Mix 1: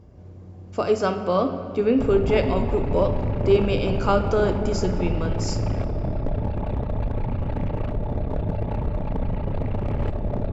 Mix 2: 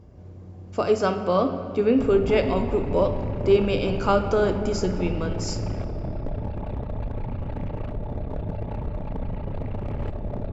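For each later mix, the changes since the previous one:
background -4.5 dB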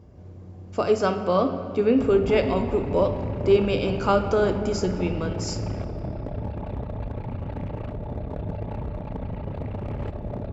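master: add high-pass 46 Hz

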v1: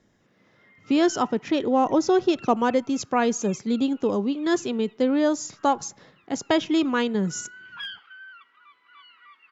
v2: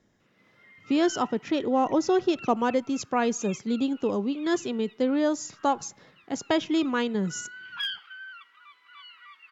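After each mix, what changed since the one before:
speech -3.0 dB; background: add tilt EQ +3 dB/octave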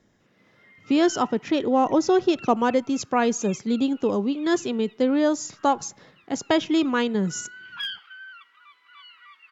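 speech +3.5 dB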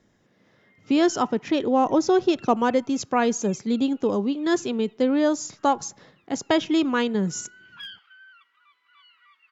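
background -8.0 dB

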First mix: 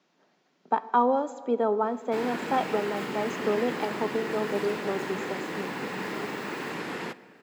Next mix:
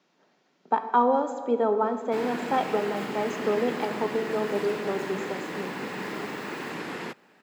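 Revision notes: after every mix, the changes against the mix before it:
speech: send +7.5 dB; background: send off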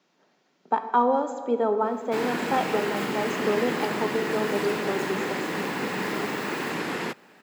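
background +5.0 dB; master: add treble shelf 7.6 kHz +4.5 dB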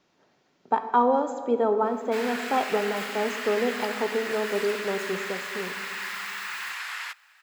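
background: add high-pass 1.2 kHz 24 dB/octave; master: remove Chebyshev high-pass 170 Hz, order 3

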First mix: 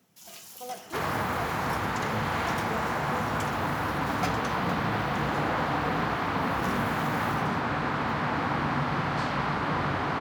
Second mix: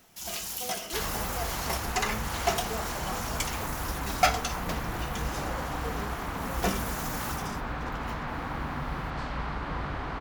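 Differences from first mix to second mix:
first sound +10.5 dB; second sound -7.0 dB; master: remove high-pass 97 Hz 24 dB/octave

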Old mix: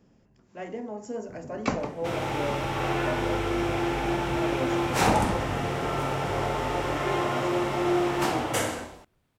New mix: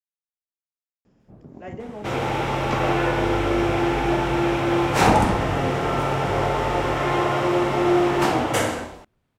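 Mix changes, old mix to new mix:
speech: entry +1.05 s; second sound +6.0 dB; master: add treble shelf 4.5 kHz -5.5 dB

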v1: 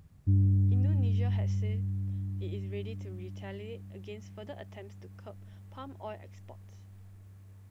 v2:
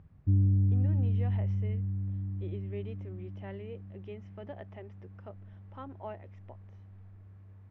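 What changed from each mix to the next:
master: add low-pass 2 kHz 12 dB/octave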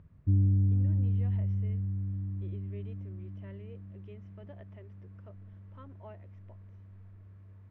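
speech -7.5 dB; master: add Butterworth band-stop 790 Hz, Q 6.6

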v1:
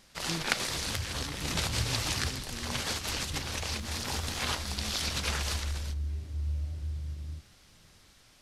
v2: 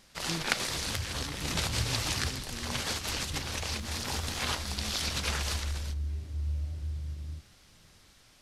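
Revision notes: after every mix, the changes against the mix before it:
no change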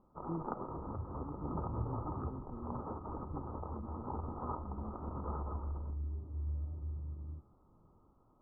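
master: add rippled Chebyshev low-pass 1.3 kHz, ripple 6 dB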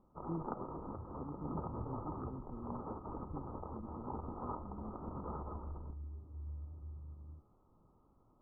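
second sound -7.0 dB; master: add distance through air 450 m

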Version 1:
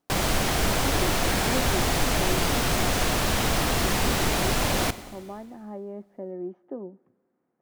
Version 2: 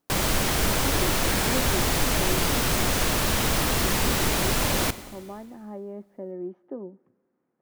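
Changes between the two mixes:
background: add treble shelf 9.8 kHz +6 dB; master: add peaking EQ 720 Hz -4.5 dB 0.22 oct

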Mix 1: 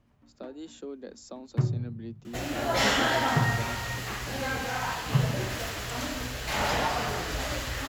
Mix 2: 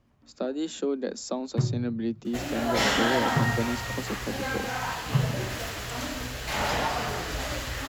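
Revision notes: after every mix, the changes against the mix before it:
speech +11.5 dB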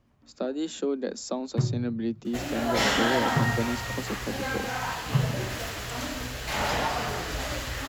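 no change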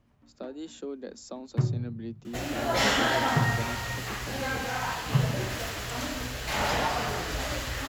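speech -9.0 dB

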